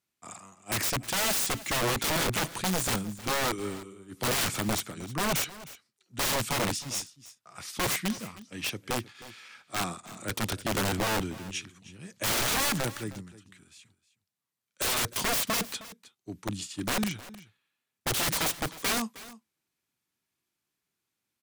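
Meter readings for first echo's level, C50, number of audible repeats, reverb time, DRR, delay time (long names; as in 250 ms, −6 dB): −17.5 dB, no reverb audible, 1, no reverb audible, no reverb audible, 312 ms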